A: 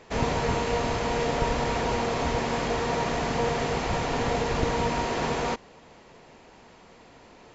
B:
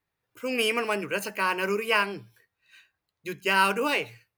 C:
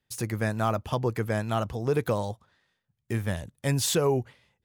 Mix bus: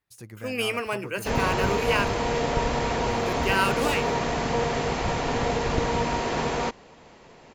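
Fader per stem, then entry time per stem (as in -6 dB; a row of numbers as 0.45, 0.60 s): +1.0, -2.0, -12.5 dB; 1.15, 0.00, 0.00 s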